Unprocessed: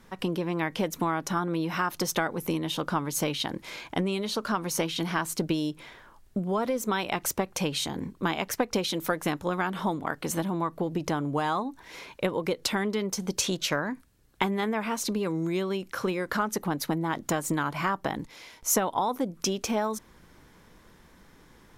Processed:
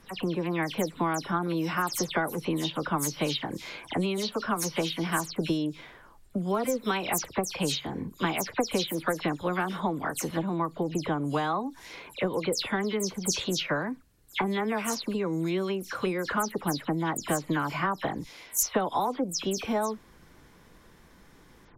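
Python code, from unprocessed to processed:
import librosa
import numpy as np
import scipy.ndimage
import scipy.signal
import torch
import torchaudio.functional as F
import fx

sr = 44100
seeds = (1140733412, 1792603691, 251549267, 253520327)

y = fx.spec_delay(x, sr, highs='early', ms=125)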